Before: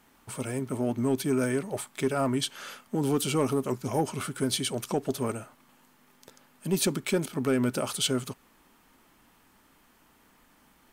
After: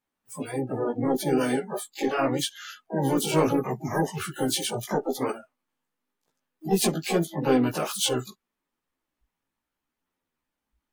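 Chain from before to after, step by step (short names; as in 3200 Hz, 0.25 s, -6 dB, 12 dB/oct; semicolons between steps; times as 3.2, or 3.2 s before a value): harmoniser +3 st -8 dB, +4 st -18 dB, +12 st -7 dB; chorus voices 2, 0.74 Hz, delay 15 ms, depth 3.8 ms; spectral noise reduction 26 dB; gain +4 dB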